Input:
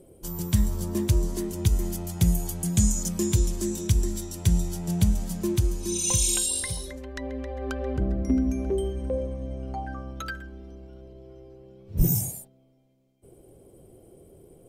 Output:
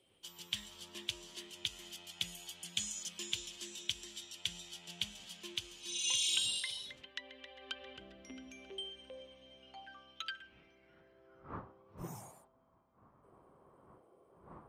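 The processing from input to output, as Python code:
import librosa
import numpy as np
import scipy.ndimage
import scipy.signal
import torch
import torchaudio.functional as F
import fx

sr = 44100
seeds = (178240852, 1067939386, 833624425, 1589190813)

y = fx.dmg_wind(x, sr, seeds[0], corner_hz=120.0, level_db=-37.0)
y = fx.filter_sweep_bandpass(y, sr, from_hz=3100.0, to_hz=1100.0, start_s=10.3, end_s=11.68, q=4.6)
y = F.gain(torch.from_numpy(y), 7.0).numpy()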